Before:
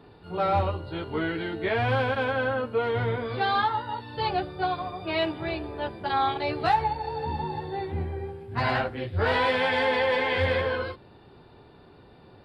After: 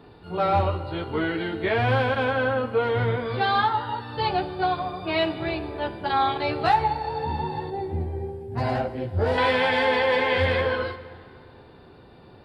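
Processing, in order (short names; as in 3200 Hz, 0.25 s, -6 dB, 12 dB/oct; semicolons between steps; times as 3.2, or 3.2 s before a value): 7.7–9.38 band shelf 2100 Hz -10 dB 2.4 oct; plate-style reverb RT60 2.3 s, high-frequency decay 0.75×, DRR 13 dB; gain +2.5 dB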